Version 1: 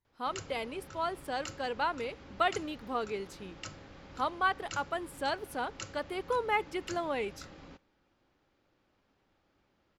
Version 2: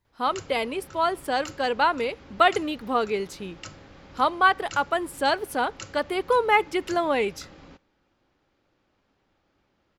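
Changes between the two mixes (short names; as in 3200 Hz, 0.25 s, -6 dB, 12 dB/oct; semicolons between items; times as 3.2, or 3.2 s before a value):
speech +10.0 dB; background +3.0 dB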